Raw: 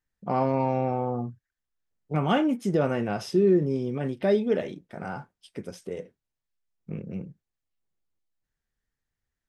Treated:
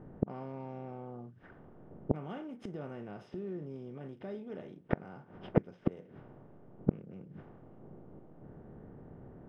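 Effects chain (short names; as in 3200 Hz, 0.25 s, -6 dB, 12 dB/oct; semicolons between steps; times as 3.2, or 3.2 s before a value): per-bin compression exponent 0.6; low-pass opened by the level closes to 650 Hz, open at -21.5 dBFS; flipped gate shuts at -24 dBFS, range -32 dB; tone controls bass +5 dB, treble -11 dB; gain +9 dB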